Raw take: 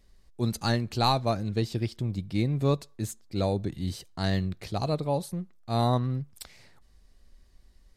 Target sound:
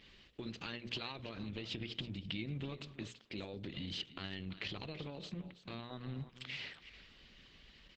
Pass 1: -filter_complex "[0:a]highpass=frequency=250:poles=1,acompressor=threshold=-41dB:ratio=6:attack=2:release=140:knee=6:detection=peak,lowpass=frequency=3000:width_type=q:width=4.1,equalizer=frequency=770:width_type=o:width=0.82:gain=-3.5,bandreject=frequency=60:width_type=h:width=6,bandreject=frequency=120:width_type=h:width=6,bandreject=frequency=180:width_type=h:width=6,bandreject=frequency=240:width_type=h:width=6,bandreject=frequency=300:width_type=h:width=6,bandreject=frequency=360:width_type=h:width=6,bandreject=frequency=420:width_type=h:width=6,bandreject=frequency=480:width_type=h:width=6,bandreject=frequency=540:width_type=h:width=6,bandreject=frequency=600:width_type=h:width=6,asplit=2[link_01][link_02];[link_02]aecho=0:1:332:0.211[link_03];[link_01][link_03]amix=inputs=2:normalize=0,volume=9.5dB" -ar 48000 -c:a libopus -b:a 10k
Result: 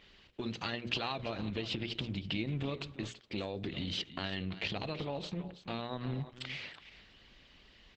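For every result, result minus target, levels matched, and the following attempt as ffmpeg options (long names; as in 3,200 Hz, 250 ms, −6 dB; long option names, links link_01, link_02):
downward compressor: peak gain reduction −5.5 dB; 1,000 Hz band +3.5 dB
-filter_complex "[0:a]highpass=frequency=250:poles=1,acompressor=threshold=-47.5dB:ratio=6:attack=2:release=140:knee=6:detection=peak,lowpass=frequency=3000:width_type=q:width=4.1,equalizer=frequency=770:width_type=o:width=0.82:gain=-3.5,bandreject=frequency=60:width_type=h:width=6,bandreject=frequency=120:width_type=h:width=6,bandreject=frequency=180:width_type=h:width=6,bandreject=frequency=240:width_type=h:width=6,bandreject=frequency=300:width_type=h:width=6,bandreject=frequency=360:width_type=h:width=6,bandreject=frequency=420:width_type=h:width=6,bandreject=frequency=480:width_type=h:width=6,bandreject=frequency=540:width_type=h:width=6,bandreject=frequency=600:width_type=h:width=6,asplit=2[link_01][link_02];[link_02]aecho=0:1:332:0.211[link_03];[link_01][link_03]amix=inputs=2:normalize=0,volume=9.5dB" -ar 48000 -c:a libopus -b:a 10k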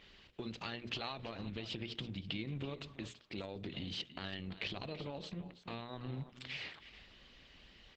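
1,000 Hz band +3.0 dB
-filter_complex "[0:a]highpass=frequency=250:poles=1,acompressor=threshold=-47.5dB:ratio=6:attack=2:release=140:knee=6:detection=peak,lowpass=frequency=3000:width_type=q:width=4.1,equalizer=frequency=770:width_type=o:width=0.82:gain=-10,bandreject=frequency=60:width_type=h:width=6,bandreject=frequency=120:width_type=h:width=6,bandreject=frequency=180:width_type=h:width=6,bandreject=frequency=240:width_type=h:width=6,bandreject=frequency=300:width_type=h:width=6,bandreject=frequency=360:width_type=h:width=6,bandreject=frequency=420:width_type=h:width=6,bandreject=frequency=480:width_type=h:width=6,bandreject=frequency=540:width_type=h:width=6,bandreject=frequency=600:width_type=h:width=6,asplit=2[link_01][link_02];[link_02]aecho=0:1:332:0.211[link_03];[link_01][link_03]amix=inputs=2:normalize=0,volume=9.5dB" -ar 48000 -c:a libopus -b:a 10k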